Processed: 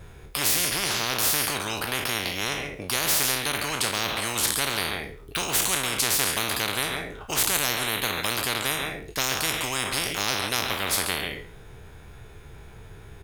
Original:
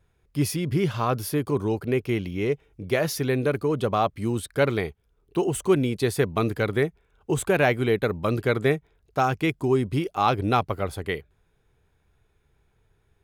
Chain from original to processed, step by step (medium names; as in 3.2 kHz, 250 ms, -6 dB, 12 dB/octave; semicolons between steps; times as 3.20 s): spectral sustain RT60 0.39 s; on a send: delay 138 ms -15 dB; on the sum: spectrum-flattening compressor 10:1; trim +5 dB